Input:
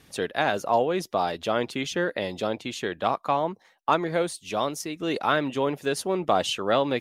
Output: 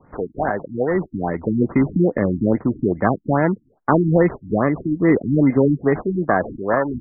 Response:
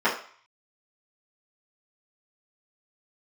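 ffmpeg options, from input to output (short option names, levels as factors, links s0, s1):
-filter_complex "[0:a]acrossover=split=360|1000|6100[s0][s1][s2][s3];[s0]dynaudnorm=f=220:g=11:m=4.73[s4];[s4][s1][s2][s3]amix=inputs=4:normalize=0,acrusher=samples=19:mix=1:aa=0.000001,afftfilt=real='re*lt(b*sr/1024,320*pow(2500/320,0.5+0.5*sin(2*PI*2.4*pts/sr)))':imag='im*lt(b*sr/1024,320*pow(2500/320,0.5+0.5*sin(2*PI*2.4*pts/sr)))':win_size=1024:overlap=0.75,volume=1.58"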